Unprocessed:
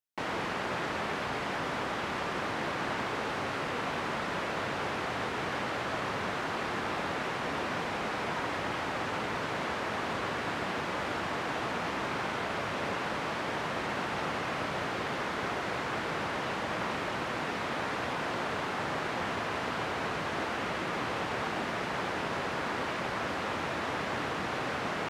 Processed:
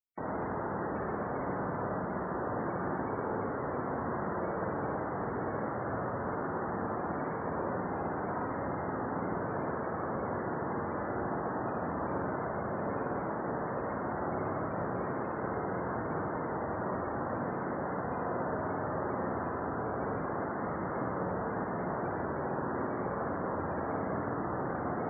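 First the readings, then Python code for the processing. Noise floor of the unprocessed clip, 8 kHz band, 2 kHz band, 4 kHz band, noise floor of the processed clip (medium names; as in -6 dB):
-35 dBFS, under -35 dB, -9.0 dB, under -40 dB, -36 dBFS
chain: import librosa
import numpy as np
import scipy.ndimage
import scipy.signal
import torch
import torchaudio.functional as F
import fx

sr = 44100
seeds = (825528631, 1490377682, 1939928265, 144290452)

y = fx.peak_eq(x, sr, hz=3300.0, db=-13.5, octaves=2.4)
y = fx.spec_topn(y, sr, count=64)
y = fx.rev_spring(y, sr, rt60_s=1.3, pass_ms=(49, 60), chirp_ms=75, drr_db=1.0)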